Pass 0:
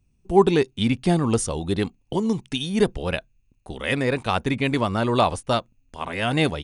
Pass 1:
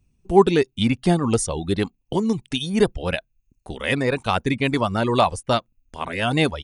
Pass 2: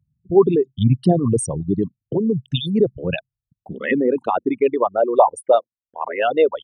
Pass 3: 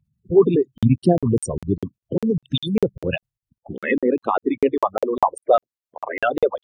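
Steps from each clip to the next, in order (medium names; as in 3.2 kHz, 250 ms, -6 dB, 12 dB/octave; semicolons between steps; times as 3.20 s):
reverb removal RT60 0.54 s; trim +2 dB
resonances exaggerated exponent 3; high-pass sweep 130 Hz -> 500 Hz, 3.35–4.86 s
coarse spectral quantiser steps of 30 dB; crackling interface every 0.20 s, samples 2048, zero, from 0.78 s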